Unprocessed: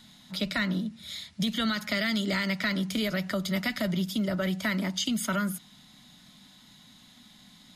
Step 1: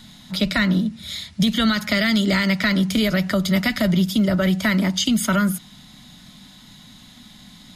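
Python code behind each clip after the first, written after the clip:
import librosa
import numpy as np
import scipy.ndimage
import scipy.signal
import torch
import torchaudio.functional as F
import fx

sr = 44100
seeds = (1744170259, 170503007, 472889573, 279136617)

y = fx.low_shelf(x, sr, hz=120.0, db=9.0)
y = y * 10.0 ** (8.0 / 20.0)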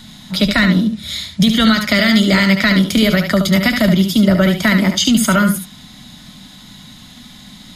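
y = x + 10.0 ** (-7.0 / 20.0) * np.pad(x, (int(72 * sr / 1000.0), 0))[:len(x)]
y = y * 10.0 ** (6.0 / 20.0)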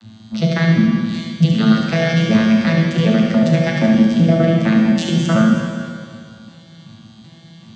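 y = fx.vocoder_arp(x, sr, chord='bare fifth', root=45, every_ms=381)
y = fx.rev_schroeder(y, sr, rt60_s=2.1, comb_ms=26, drr_db=-0.5)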